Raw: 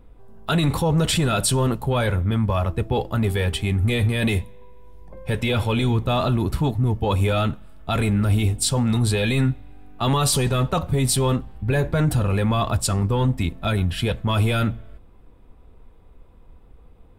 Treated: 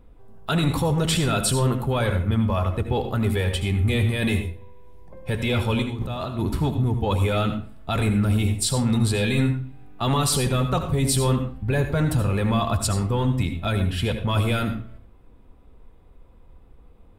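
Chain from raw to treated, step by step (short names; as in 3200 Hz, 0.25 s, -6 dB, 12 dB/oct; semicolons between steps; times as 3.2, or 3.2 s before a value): 5.82–6.39 negative-ratio compressor -28 dBFS, ratio -1; reverb RT60 0.40 s, pre-delay 70 ms, DRR 7.5 dB; gain -2 dB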